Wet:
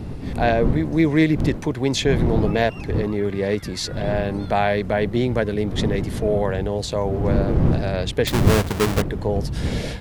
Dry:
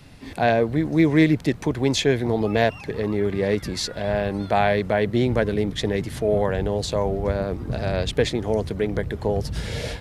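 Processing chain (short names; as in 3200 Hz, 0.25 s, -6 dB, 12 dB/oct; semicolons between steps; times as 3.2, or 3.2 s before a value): 8.27–9.02 half-waves squared off; wind noise 190 Hz -25 dBFS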